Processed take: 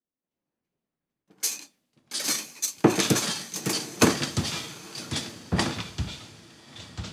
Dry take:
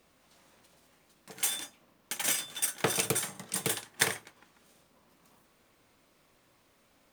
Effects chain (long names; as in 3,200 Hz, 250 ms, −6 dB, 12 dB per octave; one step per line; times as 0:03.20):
graphic EQ with 10 bands 250 Hz +4 dB, 500 Hz +5 dB, 2,000 Hz −4 dB
formants moved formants −6 semitones
feedback delay with all-pass diffusion 922 ms, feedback 51%, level −8 dB
delay with pitch and tempo change per echo 228 ms, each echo −5 semitones, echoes 2
multiband upward and downward expander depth 100%